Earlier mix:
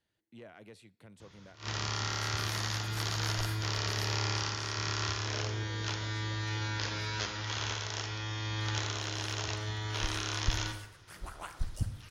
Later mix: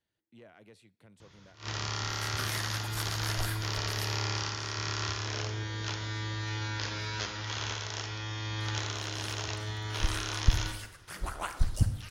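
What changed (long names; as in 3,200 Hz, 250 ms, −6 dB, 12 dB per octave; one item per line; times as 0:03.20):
speech −3.5 dB
second sound +7.5 dB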